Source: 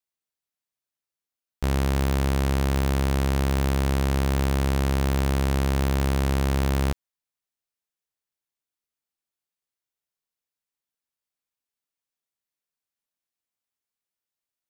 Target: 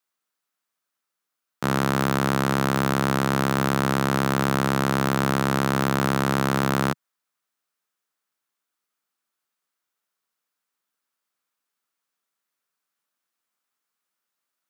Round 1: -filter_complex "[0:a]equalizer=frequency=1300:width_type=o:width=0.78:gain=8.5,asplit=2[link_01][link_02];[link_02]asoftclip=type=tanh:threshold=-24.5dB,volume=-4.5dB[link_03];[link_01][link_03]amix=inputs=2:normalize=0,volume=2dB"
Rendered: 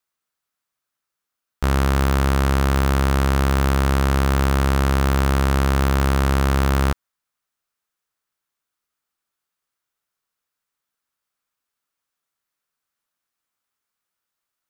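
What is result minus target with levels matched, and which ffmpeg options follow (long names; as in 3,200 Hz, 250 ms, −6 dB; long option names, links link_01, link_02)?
125 Hz band +4.0 dB
-filter_complex "[0:a]highpass=frequency=150:width=0.5412,highpass=frequency=150:width=1.3066,equalizer=frequency=1300:width_type=o:width=0.78:gain=8.5,asplit=2[link_01][link_02];[link_02]asoftclip=type=tanh:threshold=-24.5dB,volume=-4.5dB[link_03];[link_01][link_03]amix=inputs=2:normalize=0,volume=2dB"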